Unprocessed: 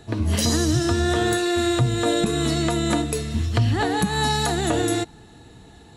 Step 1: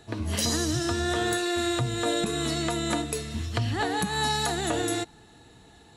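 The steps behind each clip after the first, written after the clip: bass shelf 400 Hz -6 dB; trim -3 dB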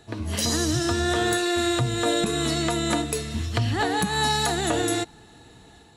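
level rider gain up to 3.5 dB; hard clipper -14.5 dBFS, distortion -32 dB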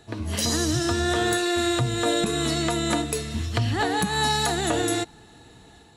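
no audible change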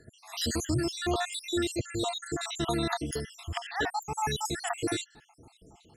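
random holes in the spectrogram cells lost 70%; trim -2.5 dB

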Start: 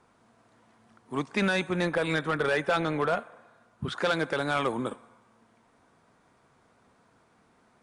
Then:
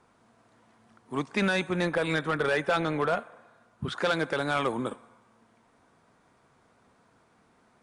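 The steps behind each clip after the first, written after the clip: no audible change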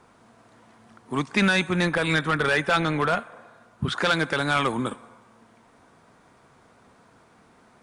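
dynamic bell 520 Hz, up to -7 dB, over -40 dBFS, Q 0.84; trim +7.5 dB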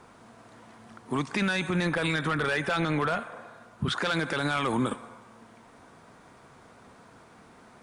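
peak limiter -22 dBFS, peak gain reduction 11.5 dB; trim +3 dB

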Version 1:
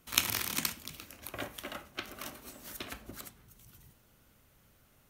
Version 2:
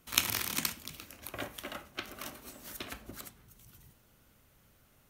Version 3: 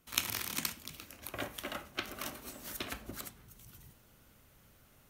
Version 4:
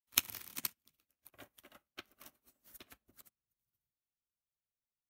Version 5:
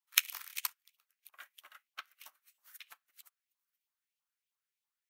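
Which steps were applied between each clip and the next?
no audible change
gain riding within 4 dB 2 s; trim -2 dB
treble shelf 12 kHz +10.5 dB; upward expansion 2.5:1, over -54 dBFS
LFO high-pass saw up 3.1 Hz 890–3000 Hz; trim +1.5 dB

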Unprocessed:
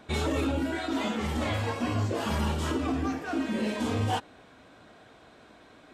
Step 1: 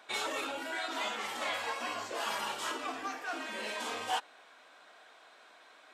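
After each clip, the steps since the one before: high-pass 790 Hz 12 dB/octave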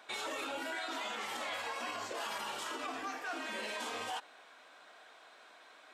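peak limiter -30.5 dBFS, peak gain reduction 9 dB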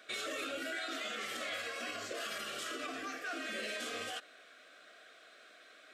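Butterworth band-stop 910 Hz, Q 1.8; trim +1 dB

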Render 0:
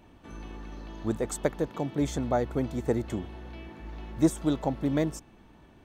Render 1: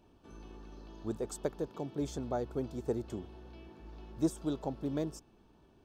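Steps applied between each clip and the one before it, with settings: graphic EQ with 31 bands 400 Hz +6 dB, 2 kHz -11 dB, 5 kHz +6 dB; trim -9 dB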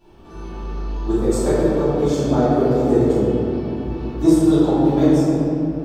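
reverberation RT60 3.0 s, pre-delay 3 ms, DRR -17.5 dB; trim +1.5 dB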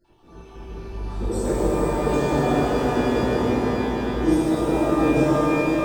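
random holes in the spectrogram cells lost 30%; echo with a slow build-up 101 ms, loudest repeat 5, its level -14.5 dB; pitch-shifted reverb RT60 3 s, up +12 st, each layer -8 dB, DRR -4 dB; trim -8.5 dB

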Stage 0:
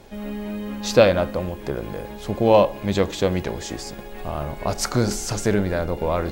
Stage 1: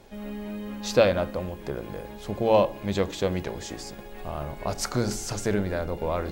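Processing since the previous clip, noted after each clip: de-hum 56.52 Hz, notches 6; trim -5 dB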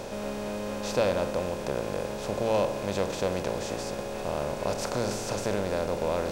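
spectral levelling over time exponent 0.4; trim -9 dB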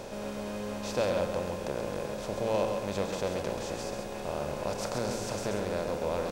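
delay 134 ms -6 dB; trim -4 dB

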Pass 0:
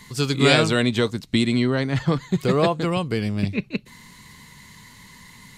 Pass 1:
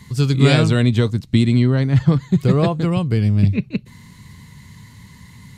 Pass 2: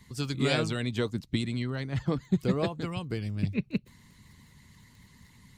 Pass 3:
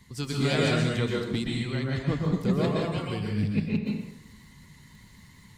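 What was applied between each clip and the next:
peaking EQ 95 Hz +15 dB 2.3 oct; trim -2.5 dB
crackle 20 per s -39 dBFS; harmonic-percussive split harmonic -11 dB; trim -7 dB
saturation -17.5 dBFS, distortion -20 dB; plate-style reverb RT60 0.79 s, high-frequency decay 0.8×, pre-delay 110 ms, DRR -2 dB

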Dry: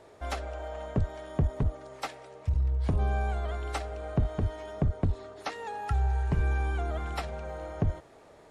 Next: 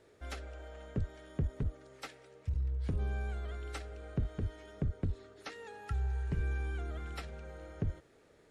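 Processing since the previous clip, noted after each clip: high-order bell 830 Hz -8.5 dB 1.1 oct; trim -7 dB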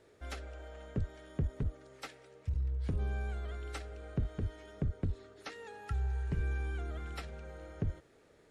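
no audible change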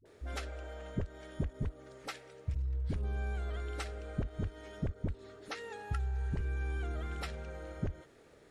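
compression, threshold -35 dBFS, peak gain reduction 7 dB; phase dispersion highs, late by 56 ms, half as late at 400 Hz; trim +3.5 dB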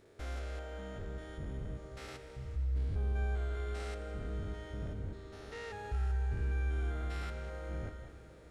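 spectrogram pixelated in time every 200 ms; plate-style reverb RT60 3.9 s, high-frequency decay 0.85×, pre-delay 0 ms, DRR 9 dB; trim +1 dB

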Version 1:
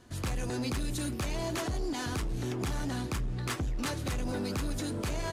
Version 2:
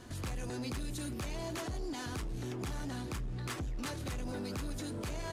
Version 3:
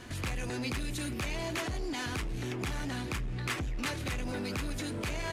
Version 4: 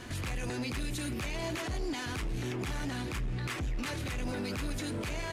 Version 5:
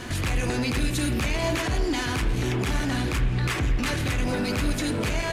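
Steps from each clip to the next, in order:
peak limiter -39.5 dBFS, peak gain reduction 11.5 dB; trim +5.5 dB
peaking EQ 2.3 kHz +8 dB 1.1 oct; trim +3 dB
peak limiter -31.5 dBFS, peak gain reduction 7.5 dB; trim +2.5 dB
reverberation RT60 1.1 s, pre-delay 46 ms, DRR 7.5 dB; trim +9 dB

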